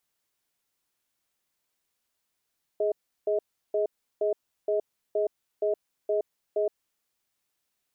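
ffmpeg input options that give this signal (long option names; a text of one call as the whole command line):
ffmpeg -f lavfi -i "aevalsrc='0.0531*(sin(2*PI*417*t)+sin(2*PI*632*t))*clip(min(mod(t,0.47),0.12-mod(t,0.47))/0.005,0,1)':duration=4.21:sample_rate=44100" out.wav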